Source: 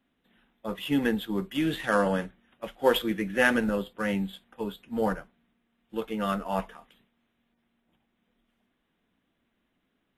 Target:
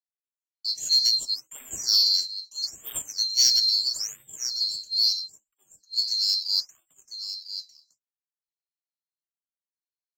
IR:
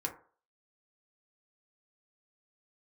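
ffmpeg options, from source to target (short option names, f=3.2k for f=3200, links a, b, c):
-filter_complex "[0:a]afftfilt=real='real(if(lt(b,736),b+184*(1-2*mod(floor(b/184),2)),b),0)':imag='imag(if(lt(b,736),b+184*(1-2*mod(floor(b/184),2)),b),0)':win_size=2048:overlap=0.75,bandreject=f=860:w=14,agate=range=-36dB:threshold=-58dB:ratio=16:detection=peak,asplit=2[a][b];[b]aecho=0:1:1000:0.282[c];[a][c]amix=inputs=2:normalize=0,aeval=exprs='0.422*(cos(1*acos(clip(val(0)/0.422,-1,1)))-cos(1*PI/2))+0.00531*(cos(3*acos(clip(val(0)/0.422,-1,1)))-cos(3*PI/2))+0.0473*(cos(5*acos(clip(val(0)/0.422,-1,1)))-cos(5*PI/2))':c=same,afftfilt=real='re*(1-between(b*sr/1024,970*pow(5300/970,0.5+0.5*sin(2*PI*0.76*pts/sr))/1.41,970*pow(5300/970,0.5+0.5*sin(2*PI*0.76*pts/sr))*1.41))':imag='im*(1-between(b*sr/1024,970*pow(5300/970,0.5+0.5*sin(2*PI*0.76*pts/sr))/1.41,970*pow(5300/970,0.5+0.5*sin(2*PI*0.76*pts/sr))*1.41))':win_size=1024:overlap=0.75,volume=1dB"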